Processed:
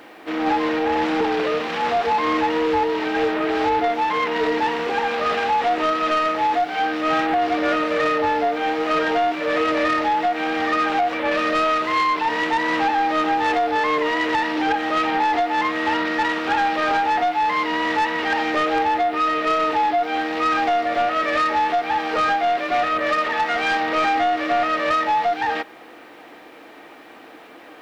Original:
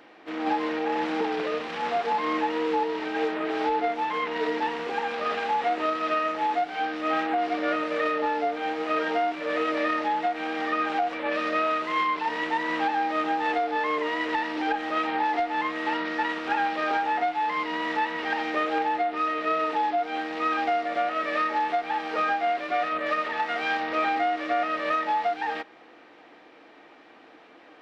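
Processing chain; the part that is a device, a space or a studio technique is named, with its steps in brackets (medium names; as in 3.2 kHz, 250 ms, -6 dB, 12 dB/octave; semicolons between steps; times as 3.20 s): open-reel tape (saturation -22.5 dBFS, distortion -16 dB; peaking EQ 82 Hz +2.5 dB; white noise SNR 44 dB); trim +8.5 dB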